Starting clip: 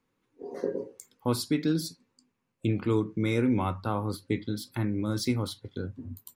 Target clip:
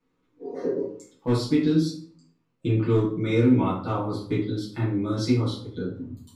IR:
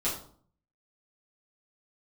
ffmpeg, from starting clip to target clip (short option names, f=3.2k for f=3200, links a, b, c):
-filter_complex "[0:a]lowpass=6.5k,volume=17.5dB,asoftclip=hard,volume=-17.5dB[a];[1:a]atrim=start_sample=2205[b];[a][b]afir=irnorm=-1:irlink=0,volume=-4.5dB"